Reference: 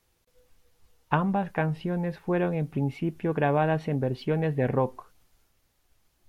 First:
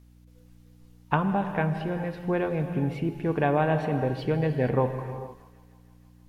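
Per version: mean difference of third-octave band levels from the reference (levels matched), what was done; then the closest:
4.0 dB: mains hum 60 Hz, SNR 25 dB
feedback echo with a high-pass in the loop 157 ms, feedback 76%, high-pass 270 Hz, level −24 dB
reverb whose tail is shaped and stops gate 500 ms flat, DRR 7.5 dB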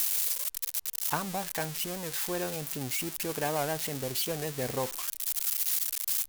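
15.0 dB: spike at every zero crossing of −15.5 dBFS
parametric band 170 Hz −6.5 dB 1.3 octaves
wow of a warped record 78 rpm, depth 160 cents
level −6 dB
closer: first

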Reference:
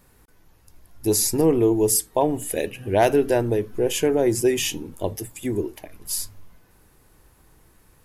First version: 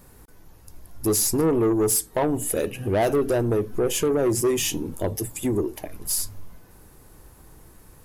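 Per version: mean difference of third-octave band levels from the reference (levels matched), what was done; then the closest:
4.0 dB: parametric band 2,500 Hz −5 dB 2 octaves
in parallel at +1.5 dB: downward compressor, threshold −30 dBFS, peak gain reduction 15 dB
on the sum: soft clipping −16 dBFS, distortion −12 dB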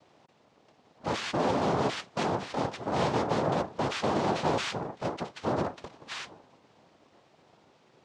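12.0 dB: hard clipping −25.5 dBFS, distortion −5 dB
cochlear-implant simulation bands 2
low-pass filter 3,600 Hz 12 dB per octave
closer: first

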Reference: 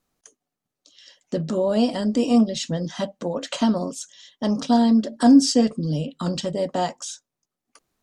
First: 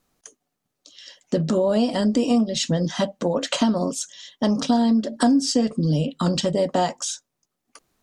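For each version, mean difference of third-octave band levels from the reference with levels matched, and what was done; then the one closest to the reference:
3.0 dB: downward compressor 5 to 1, threshold −22 dBFS, peak gain reduction 12.5 dB
level +5.5 dB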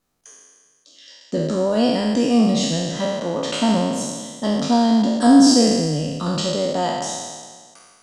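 7.5 dB: peak hold with a decay on every bin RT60 1.65 s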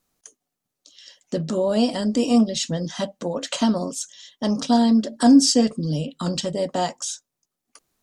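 1.0 dB: high-shelf EQ 4,400 Hz +6.5 dB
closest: third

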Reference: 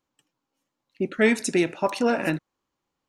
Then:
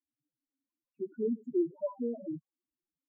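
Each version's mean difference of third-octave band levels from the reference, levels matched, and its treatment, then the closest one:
18.0 dB: spectral peaks only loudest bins 16
low-pass filter 1,500 Hz
spectral peaks only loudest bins 2
rotating-speaker cabinet horn 1 Hz
level −5 dB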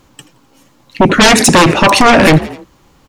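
10.0 dB: low-shelf EQ 150 Hz +11.5 dB
sine wavefolder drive 16 dB, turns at −5 dBFS
echo with shifted repeats 85 ms, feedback 51%, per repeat +58 Hz, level −23 dB
boost into a limiter +11 dB
level −1 dB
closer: second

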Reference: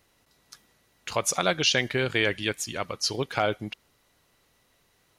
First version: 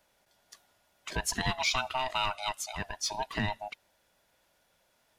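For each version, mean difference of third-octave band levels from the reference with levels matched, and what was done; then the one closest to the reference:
8.0 dB: neighbouring bands swapped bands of 500 Hz
in parallel at −7 dB: soft clipping −25.5 dBFS, distortion −8 dB
on the sum: level −7.5 dB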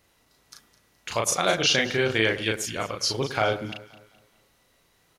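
4.5 dB: double-tracking delay 36 ms −3 dB
delay that swaps between a low-pass and a high-pass 105 ms, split 1,400 Hz, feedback 61%, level −13 dB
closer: second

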